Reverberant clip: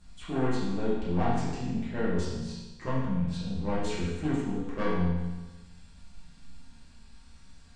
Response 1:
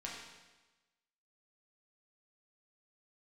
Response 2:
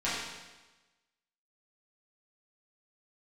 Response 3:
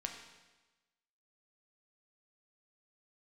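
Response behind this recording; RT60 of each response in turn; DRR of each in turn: 2; 1.2, 1.2, 1.2 seconds; −4.5, −11.5, 2.0 decibels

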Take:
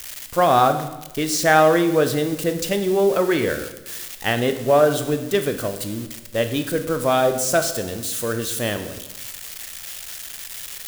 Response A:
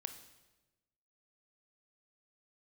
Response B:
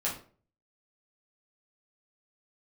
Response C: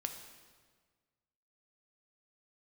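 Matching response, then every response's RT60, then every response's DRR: A; 1.1, 0.45, 1.6 seconds; 8.0, −6.5, 4.5 decibels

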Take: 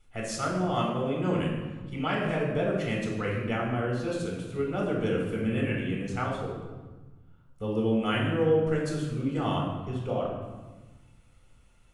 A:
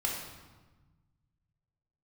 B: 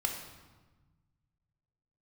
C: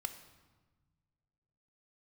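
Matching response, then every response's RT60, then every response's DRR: A; 1.2, 1.2, 1.3 seconds; −2.0, 2.0, 8.0 decibels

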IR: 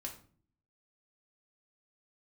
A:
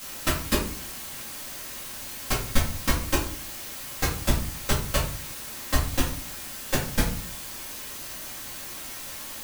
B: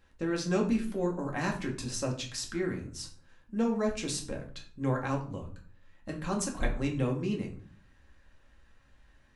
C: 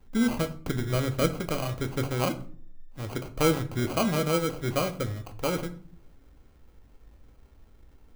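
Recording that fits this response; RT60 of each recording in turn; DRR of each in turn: B; 0.45, 0.45, 0.50 seconds; −7.5, 0.0, 7.0 decibels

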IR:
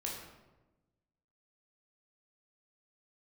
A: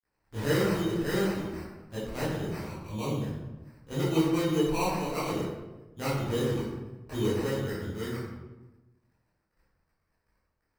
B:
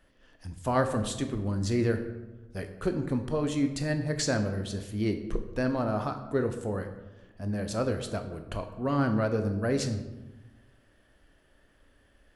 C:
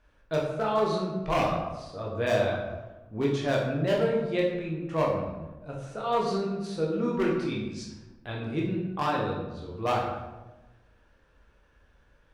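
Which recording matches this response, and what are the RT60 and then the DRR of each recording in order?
C; 1.1, 1.1, 1.1 seconds; −10.5, 6.5, −3.0 decibels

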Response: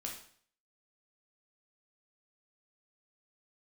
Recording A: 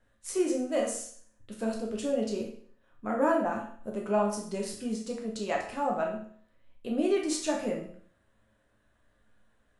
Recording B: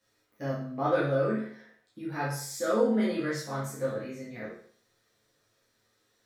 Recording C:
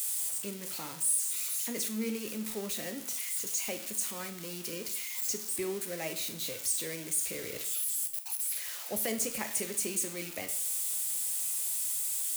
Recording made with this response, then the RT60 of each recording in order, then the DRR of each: A; 0.55, 0.55, 0.55 seconds; −1.0, −8.5, 6.0 decibels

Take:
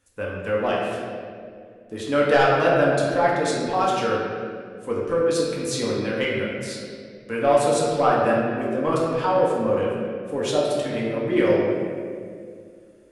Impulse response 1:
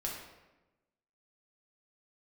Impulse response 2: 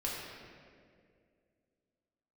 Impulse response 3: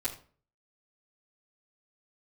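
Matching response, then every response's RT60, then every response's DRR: 2; 1.1, 2.2, 0.45 seconds; −3.0, −5.5, −9.5 decibels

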